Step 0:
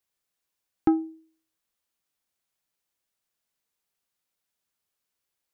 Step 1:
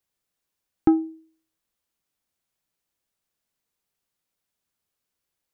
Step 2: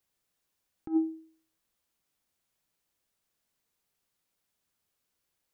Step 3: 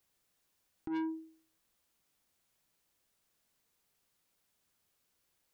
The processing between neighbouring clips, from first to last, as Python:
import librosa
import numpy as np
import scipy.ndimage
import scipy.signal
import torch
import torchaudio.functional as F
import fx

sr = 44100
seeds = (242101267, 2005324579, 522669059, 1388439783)

y1 = fx.low_shelf(x, sr, hz=450.0, db=5.5)
y2 = fx.over_compress(y1, sr, threshold_db=-23.0, ratio=-0.5)
y2 = F.gain(torch.from_numpy(y2), -3.5).numpy()
y3 = 10.0 ** (-36.0 / 20.0) * np.tanh(y2 / 10.0 ** (-36.0 / 20.0))
y3 = F.gain(torch.from_numpy(y3), 3.0).numpy()